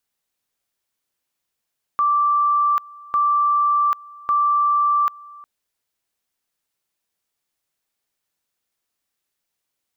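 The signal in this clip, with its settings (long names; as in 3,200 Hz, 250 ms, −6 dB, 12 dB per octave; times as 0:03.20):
tone at two levels in turn 1,170 Hz −14.5 dBFS, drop 23.5 dB, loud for 0.79 s, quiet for 0.36 s, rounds 3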